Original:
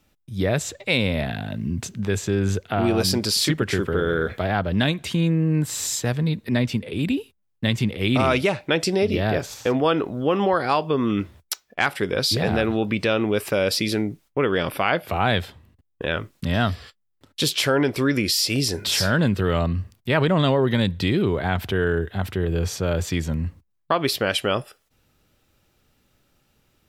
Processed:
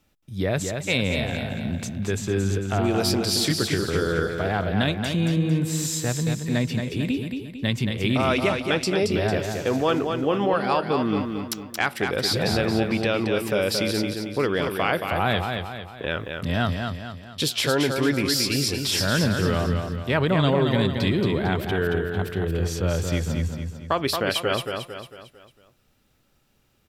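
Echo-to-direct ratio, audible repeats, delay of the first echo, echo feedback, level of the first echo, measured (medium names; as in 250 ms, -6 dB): -4.5 dB, 5, 225 ms, 45%, -5.5 dB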